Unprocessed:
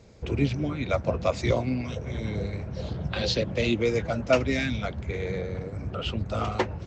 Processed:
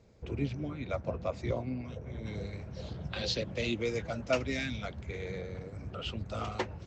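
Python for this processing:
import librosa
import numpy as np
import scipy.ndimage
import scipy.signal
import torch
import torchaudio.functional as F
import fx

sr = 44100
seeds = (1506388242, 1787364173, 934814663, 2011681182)

y = fx.high_shelf(x, sr, hz=2300.0, db=fx.steps((0.0, -4.0), (1.21, -9.0), (2.25, 4.5)))
y = F.gain(torch.from_numpy(y), -8.5).numpy()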